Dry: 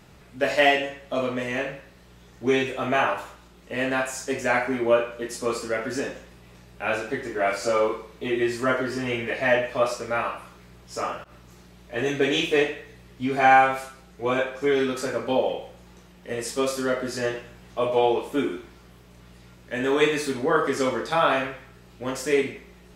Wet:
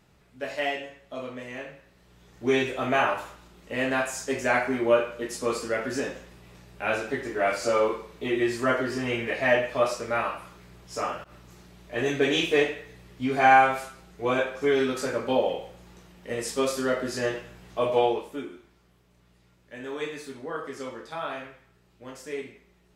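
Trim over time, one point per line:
1.74 s -10 dB
2.57 s -1 dB
18.00 s -1 dB
18.48 s -12.5 dB

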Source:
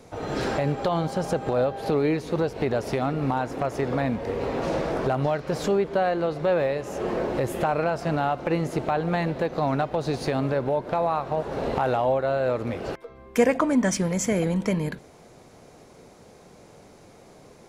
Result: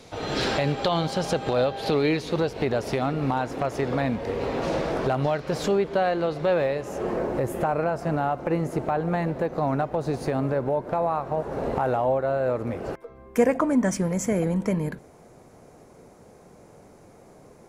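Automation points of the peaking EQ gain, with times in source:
peaking EQ 3.7 kHz 1.5 oct
2.09 s +10 dB
2.69 s +2.5 dB
6.53 s +2.5 dB
7.32 s -9 dB

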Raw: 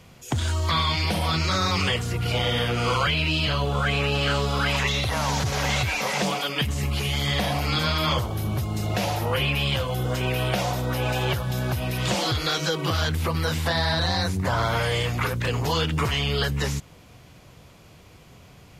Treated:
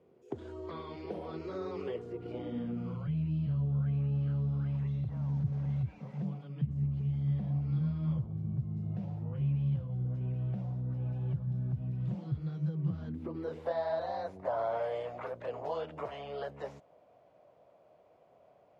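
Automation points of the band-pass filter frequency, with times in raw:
band-pass filter, Q 4.7
2.17 s 400 Hz
3.07 s 150 Hz
12.84 s 150 Hz
13.77 s 620 Hz

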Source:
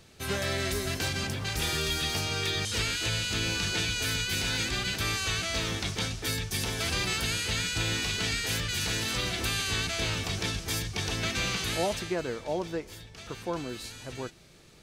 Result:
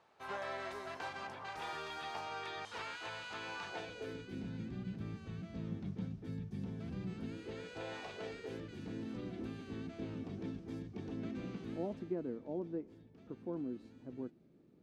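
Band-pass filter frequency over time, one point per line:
band-pass filter, Q 2.5
3.63 s 920 Hz
4.52 s 190 Hz
7.08 s 190 Hz
7.97 s 740 Hz
8.82 s 260 Hz

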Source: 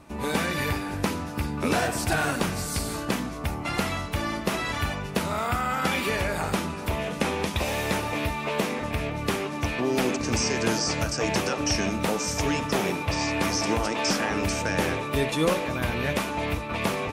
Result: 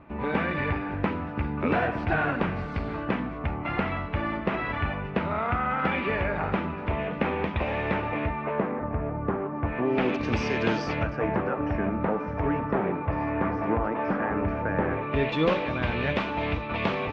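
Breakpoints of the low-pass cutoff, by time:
low-pass 24 dB/octave
8.07 s 2.5 kHz
8.90 s 1.4 kHz
9.54 s 1.4 kHz
10.18 s 3.5 kHz
10.81 s 3.5 kHz
11.32 s 1.7 kHz
14.88 s 1.7 kHz
15.34 s 3.6 kHz

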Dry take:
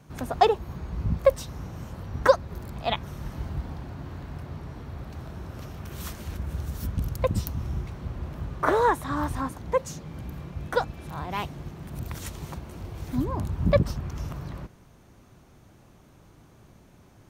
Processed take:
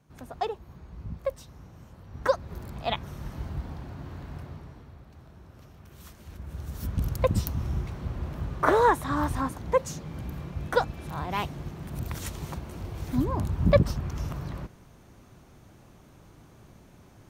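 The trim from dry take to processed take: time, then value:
2.03 s -11 dB
2.51 s -2 dB
4.40 s -2 dB
5.03 s -12 dB
6.14 s -12 dB
7.04 s +1 dB

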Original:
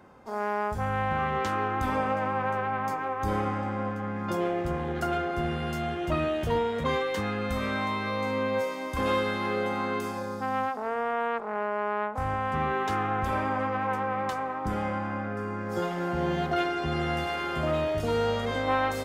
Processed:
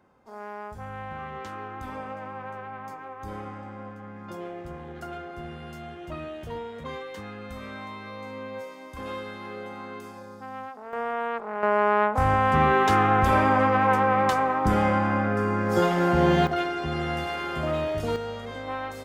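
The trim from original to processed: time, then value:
-9 dB
from 10.93 s -0.5 dB
from 11.63 s +8 dB
from 16.47 s 0 dB
from 18.16 s -7 dB

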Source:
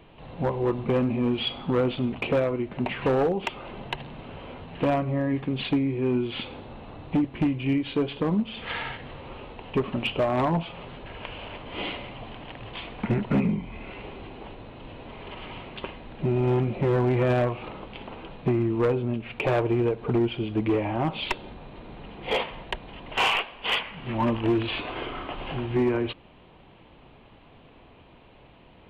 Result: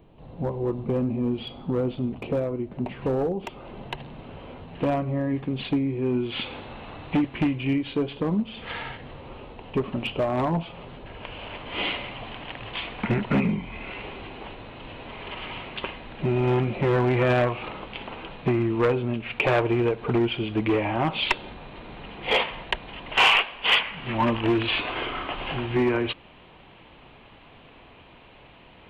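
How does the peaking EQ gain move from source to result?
peaking EQ 2.3 kHz 2.8 oct
3.38 s -11 dB
3.86 s -3 dB
6.12 s -3 dB
6.56 s +8 dB
7.26 s +8 dB
8.00 s -2.5 dB
11.18 s -2.5 dB
11.74 s +6.5 dB

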